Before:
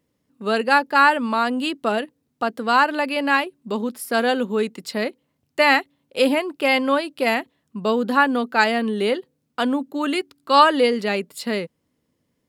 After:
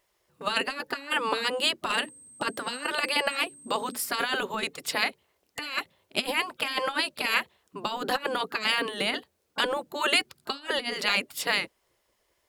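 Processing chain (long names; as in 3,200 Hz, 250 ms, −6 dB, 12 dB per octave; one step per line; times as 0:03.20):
0:01.93–0:04.00: steady tone 8,300 Hz −27 dBFS
compressor whose output falls as the input rises −21 dBFS, ratio −0.5
gate on every frequency bin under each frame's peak −10 dB weak
level +3.5 dB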